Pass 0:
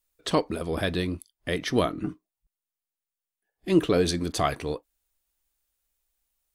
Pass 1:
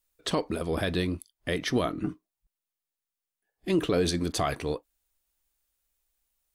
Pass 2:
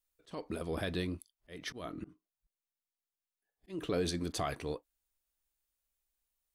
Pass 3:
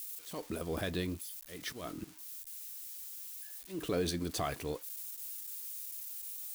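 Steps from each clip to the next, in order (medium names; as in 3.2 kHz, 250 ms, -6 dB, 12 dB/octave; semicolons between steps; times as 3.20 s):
peak limiter -16 dBFS, peak gain reduction 7 dB
slow attack 256 ms; trim -7.5 dB
zero-crossing glitches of -39 dBFS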